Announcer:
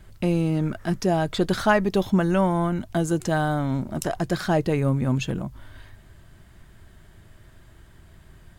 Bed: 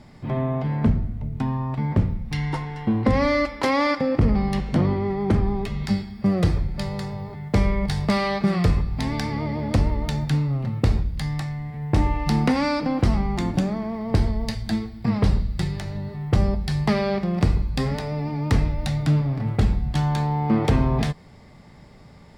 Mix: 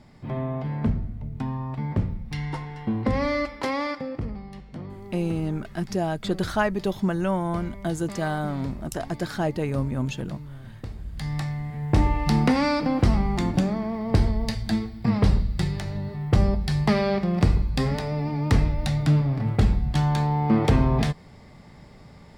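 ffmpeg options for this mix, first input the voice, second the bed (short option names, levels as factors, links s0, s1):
-filter_complex "[0:a]adelay=4900,volume=0.631[s0];[1:a]volume=4.22,afade=t=out:st=3.53:d=0.89:silence=0.237137,afade=t=in:st=10.98:d=0.45:silence=0.141254[s1];[s0][s1]amix=inputs=2:normalize=0"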